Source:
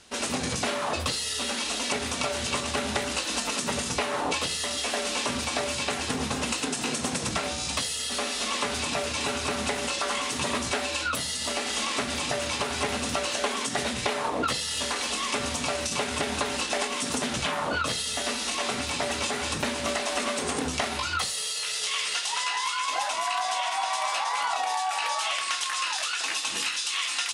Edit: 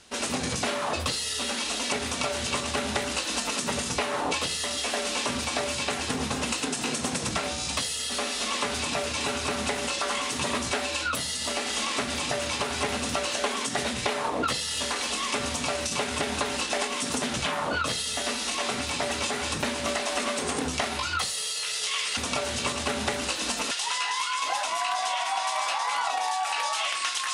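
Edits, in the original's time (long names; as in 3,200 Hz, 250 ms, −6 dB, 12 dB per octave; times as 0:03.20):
0:02.05–0:03.59: duplicate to 0:22.17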